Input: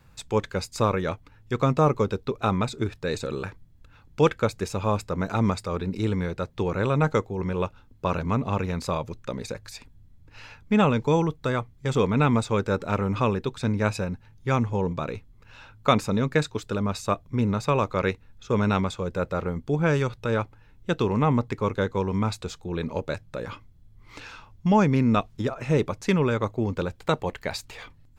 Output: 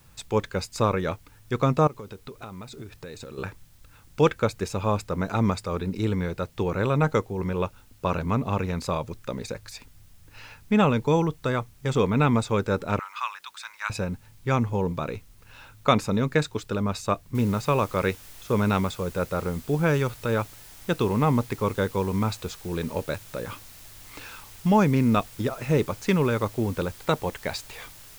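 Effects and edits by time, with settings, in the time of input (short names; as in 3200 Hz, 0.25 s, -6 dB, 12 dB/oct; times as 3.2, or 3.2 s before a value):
1.87–3.38 compressor 8:1, threshold -36 dBFS
12.99–13.9 steep high-pass 990 Hz
17.35 noise floor step -62 dB -48 dB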